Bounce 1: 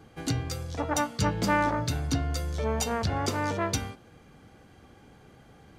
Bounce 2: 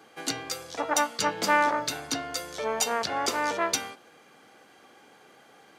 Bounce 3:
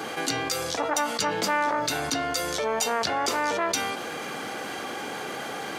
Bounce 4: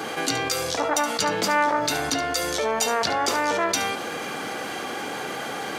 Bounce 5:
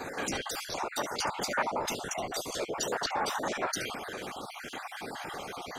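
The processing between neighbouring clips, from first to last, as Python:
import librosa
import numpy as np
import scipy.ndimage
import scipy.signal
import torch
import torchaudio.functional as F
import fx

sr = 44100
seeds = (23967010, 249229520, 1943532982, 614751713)

y1 = scipy.signal.sosfilt(scipy.signal.butter(2, 290.0, 'highpass', fs=sr, output='sos'), x)
y1 = fx.low_shelf(y1, sr, hz=420.0, db=-9.0)
y1 = y1 * librosa.db_to_amplitude(5.0)
y2 = fx.env_flatten(y1, sr, amount_pct=70)
y2 = y2 * librosa.db_to_amplitude(-3.5)
y3 = y2 + 10.0 ** (-11.5 / 20.0) * np.pad(y2, (int(71 * sr / 1000.0), 0))[:len(y2)]
y3 = y3 * librosa.db_to_amplitude(2.5)
y4 = fx.spec_dropout(y3, sr, seeds[0], share_pct=41)
y4 = fx.whisperise(y4, sr, seeds[1])
y4 = y4 * librosa.db_to_amplitude(-7.0)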